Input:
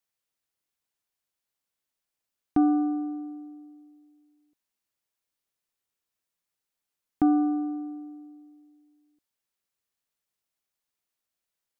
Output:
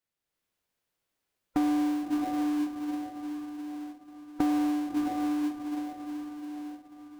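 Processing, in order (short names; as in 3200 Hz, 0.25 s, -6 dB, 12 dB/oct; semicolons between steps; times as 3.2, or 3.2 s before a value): AGC gain up to 7 dB; on a send: diffused feedback echo 1.042 s, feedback 47%, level -8.5 dB; on the sum: compressor 10:1, threshold -22 dBFS, peak gain reduction 11.5 dB; time stretch by phase-locked vocoder 0.61×; tone controls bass -8 dB, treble -5 dB; in parallel at -9 dB: sample-rate reducer 1300 Hz, jitter 20%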